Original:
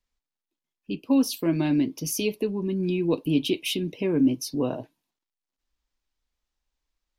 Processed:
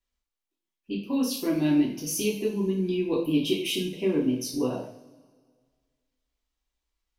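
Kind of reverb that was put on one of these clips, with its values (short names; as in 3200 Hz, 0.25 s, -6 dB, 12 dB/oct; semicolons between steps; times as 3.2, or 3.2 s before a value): two-slope reverb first 0.47 s, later 1.8 s, from -20 dB, DRR -4.5 dB; gain -6.5 dB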